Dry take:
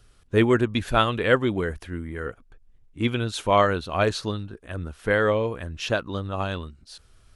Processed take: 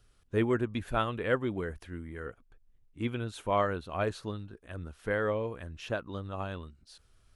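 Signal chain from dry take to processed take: dynamic EQ 4900 Hz, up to -8 dB, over -44 dBFS, Q 0.79; gain -8.5 dB

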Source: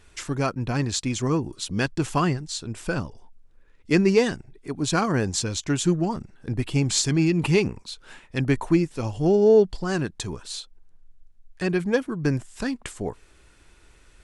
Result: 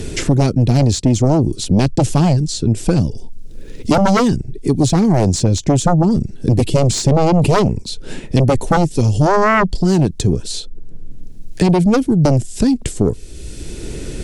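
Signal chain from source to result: EQ curve 150 Hz 0 dB, 440 Hz -4 dB, 1100 Hz -25 dB, 5000 Hz -8 dB; sine folder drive 20 dB, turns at -2.5 dBFS; three-band squash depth 70%; gain -6 dB

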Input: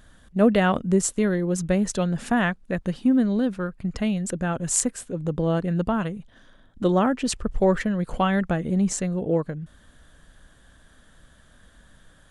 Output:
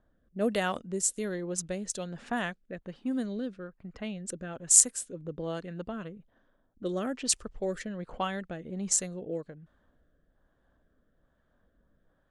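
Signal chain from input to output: tone controls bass -8 dB, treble +13 dB; low-pass opened by the level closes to 860 Hz, open at -17 dBFS; rotary speaker horn 1.2 Hz; gain -7.5 dB

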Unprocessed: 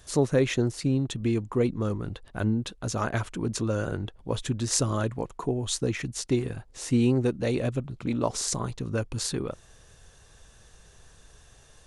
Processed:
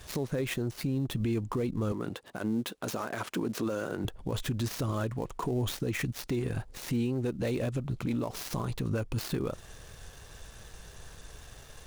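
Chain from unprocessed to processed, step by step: switching dead time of 0.057 ms; 1.92–4.05 HPF 230 Hz 12 dB/oct; compressor 6:1, threshold -30 dBFS, peak gain reduction 12.5 dB; limiter -28.5 dBFS, peak gain reduction 11.5 dB; gain +6 dB

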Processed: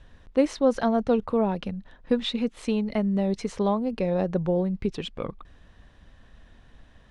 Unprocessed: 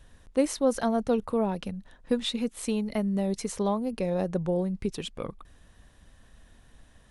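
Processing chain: LPF 4200 Hz 12 dB/oct; gain +3 dB

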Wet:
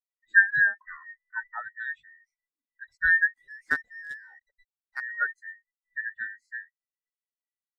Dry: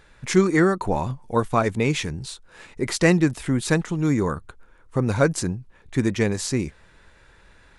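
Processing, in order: band inversion scrambler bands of 2000 Hz; 3.33–5.03 companded quantiser 2-bit; spectral expander 2.5:1; gain -6.5 dB

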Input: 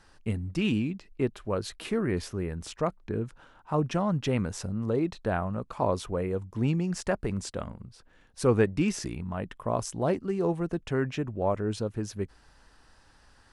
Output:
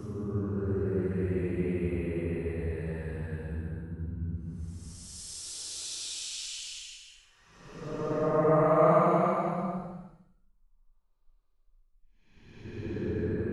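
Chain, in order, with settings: Paulstretch 17×, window 0.10 s, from 2.33; three-band expander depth 40%

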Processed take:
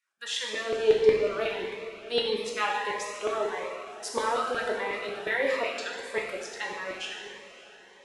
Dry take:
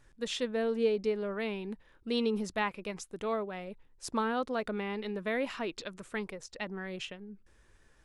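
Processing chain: gate -55 dBFS, range -18 dB; LFO high-pass saw down 5.5 Hz 410–2300 Hz; diffused feedback echo 0.529 s, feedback 56%, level -15 dB; non-linear reverb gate 0.48 s falling, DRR -1.5 dB; cascading phaser rising 1.6 Hz; gain +3 dB

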